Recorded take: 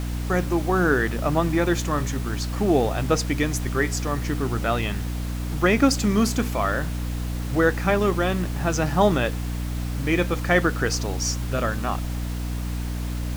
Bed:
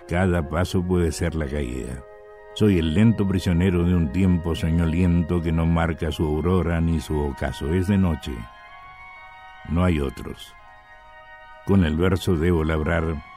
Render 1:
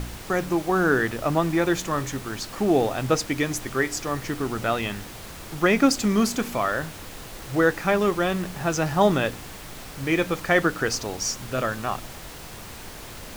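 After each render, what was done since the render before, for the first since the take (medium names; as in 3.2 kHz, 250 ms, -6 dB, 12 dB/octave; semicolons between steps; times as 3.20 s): de-hum 60 Hz, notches 5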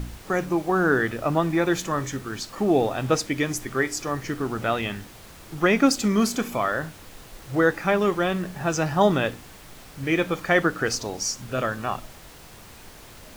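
noise print and reduce 6 dB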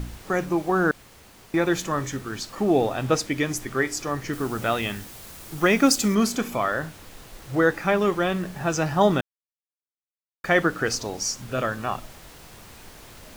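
0.91–1.54 s: room tone; 4.33–6.15 s: treble shelf 6.3 kHz +9.5 dB; 9.21–10.44 s: mute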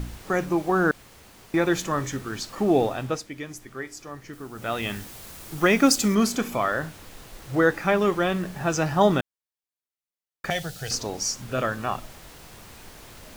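2.83–4.94 s: dip -11 dB, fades 0.41 s; 10.50–10.91 s: FFT filter 150 Hz 0 dB, 270 Hz -23 dB, 770 Hz -3 dB, 1.1 kHz -22 dB, 4 kHz +7 dB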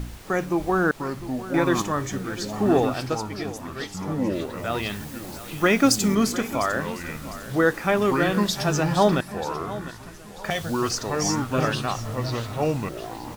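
feedback delay 703 ms, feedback 34%, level -15 dB; ever faster or slower copies 600 ms, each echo -5 st, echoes 2, each echo -6 dB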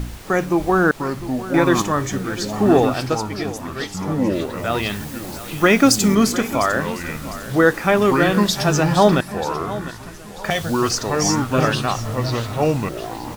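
trim +5.5 dB; peak limiter -2 dBFS, peak gain reduction 1.5 dB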